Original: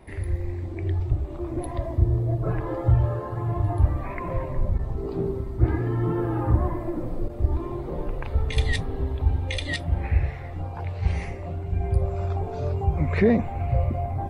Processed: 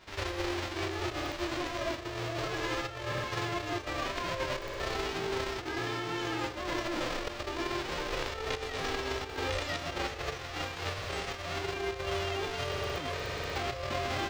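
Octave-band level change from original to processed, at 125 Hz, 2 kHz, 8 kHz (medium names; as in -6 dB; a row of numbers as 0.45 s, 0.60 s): -17.5 dB, +2.5 dB, +6.0 dB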